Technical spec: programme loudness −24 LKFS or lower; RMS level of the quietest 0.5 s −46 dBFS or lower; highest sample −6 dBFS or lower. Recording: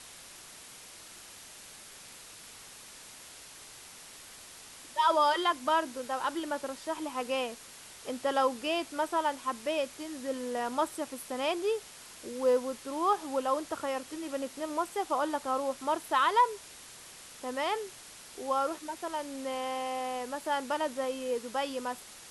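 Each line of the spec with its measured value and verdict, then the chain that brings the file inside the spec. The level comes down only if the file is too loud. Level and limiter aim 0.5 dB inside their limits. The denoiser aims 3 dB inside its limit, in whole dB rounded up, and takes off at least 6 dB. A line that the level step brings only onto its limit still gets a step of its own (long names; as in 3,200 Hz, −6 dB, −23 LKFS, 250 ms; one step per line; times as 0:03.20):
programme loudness −32.0 LKFS: in spec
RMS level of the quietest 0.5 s −50 dBFS: in spec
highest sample −15.0 dBFS: in spec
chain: no processing needed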